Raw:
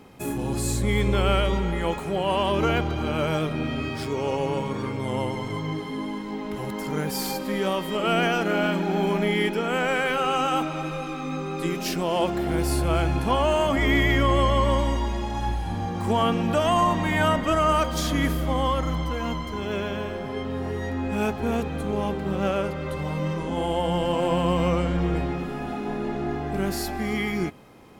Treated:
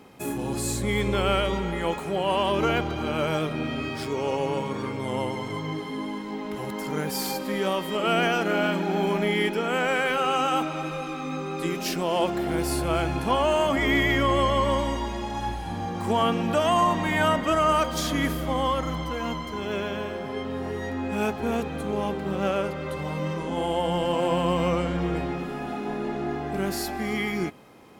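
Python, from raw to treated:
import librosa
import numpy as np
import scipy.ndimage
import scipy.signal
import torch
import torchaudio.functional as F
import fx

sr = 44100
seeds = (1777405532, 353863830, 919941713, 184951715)

y = fx.low_shelf(x, sr, hz=100.0, db=-10.0)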